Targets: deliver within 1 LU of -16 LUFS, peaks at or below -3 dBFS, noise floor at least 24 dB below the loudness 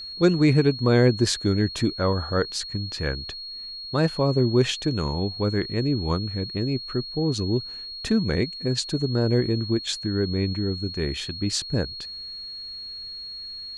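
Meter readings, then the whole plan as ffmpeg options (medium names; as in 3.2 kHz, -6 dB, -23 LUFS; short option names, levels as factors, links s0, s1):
steady tone 4.3 kHz; tone level -34 dBFS; loudness -25.0 LUFS; peak level -7.0 dBFS; loudness target -16.0 LUFS
-> -af "bandreject=f=4300:w=30"
-af "volume=2.82,alimiter=limit=0.708:level=0:latency=1"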